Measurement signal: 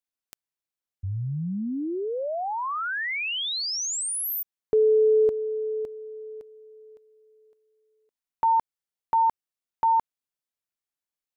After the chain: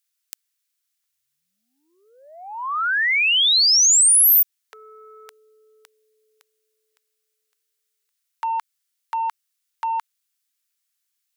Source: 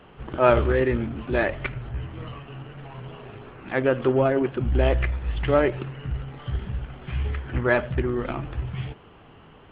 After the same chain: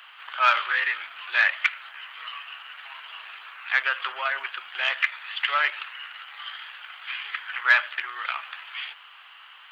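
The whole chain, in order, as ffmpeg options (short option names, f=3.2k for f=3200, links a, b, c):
-af "highshelf=f=2.7k:g=9.5,acontrast=68,highpass=f=1.2k:w=0.5412,highpass=f=1.2k:w=1.3066"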